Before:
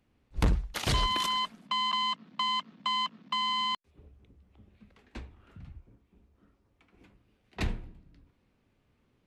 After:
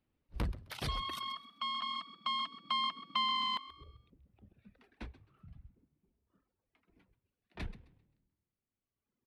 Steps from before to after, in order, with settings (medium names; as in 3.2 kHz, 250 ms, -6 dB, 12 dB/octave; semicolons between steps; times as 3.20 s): Doppler pass-by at 3.72 s, 21 m/s, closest 25 m; peaking EQ 7 kHz -11 dB 0.43 oct; frequency-shifting echo 131 ms, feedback 37%, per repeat +39 Hz, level -10 dB; reverb removal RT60 1.9 s